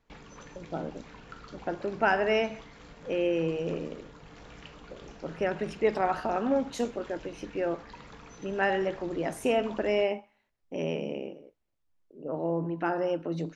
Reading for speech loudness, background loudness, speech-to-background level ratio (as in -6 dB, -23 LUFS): -30.5 LUFS, -49.5 LUFS, 19.0 dB